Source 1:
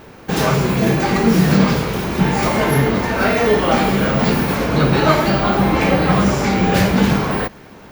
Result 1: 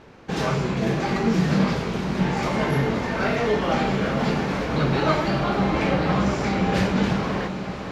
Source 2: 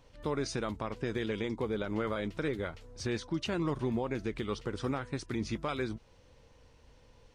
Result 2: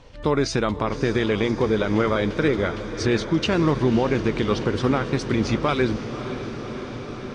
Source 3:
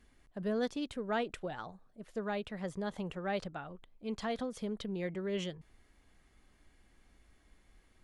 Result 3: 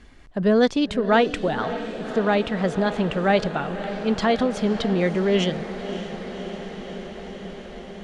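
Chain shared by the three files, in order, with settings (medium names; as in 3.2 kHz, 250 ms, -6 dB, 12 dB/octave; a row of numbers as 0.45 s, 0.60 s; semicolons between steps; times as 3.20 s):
low-pass 6.3 kHz 12 dB/octave; on a send: echo that smears into a reverb 570 ms, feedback 78%, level -12 dB; on the sum: normalise loudness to -23 LUFS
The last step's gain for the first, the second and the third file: -7.5 dB, +12.5 dB, +16.0 dB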